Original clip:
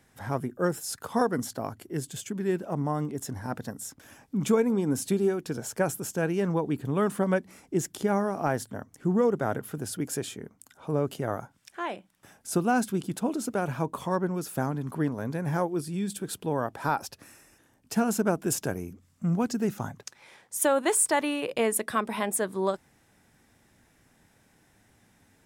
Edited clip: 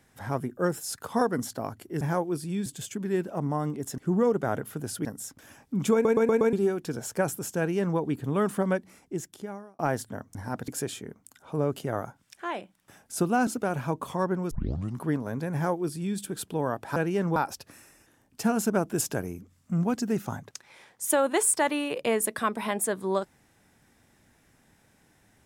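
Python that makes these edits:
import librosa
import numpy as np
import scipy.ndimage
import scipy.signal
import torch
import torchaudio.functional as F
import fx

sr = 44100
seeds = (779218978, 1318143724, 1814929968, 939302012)

y = fx.edit(x, sr, fx.swap(start_s=3.33, length_s=0.33, other_s=8.96, other_length_s=1.07),
    fx.stutter_over(start_s=4.54, slice_s=0.12, count=5),
    fx.duplicate(start_s=6.19, length_s=0.4, to_s=16.88),
    fx.fade_out_span(start_s=7.19, length_s=1.21),
    fx.cut(start_s=12.82, length_s=0.57),
    fx.tape_start(start_s=14.43, length_s=0.47),
    fx.duplicate(start_s=15.45, length_s=0.65, to_s=2.01), tone=tone)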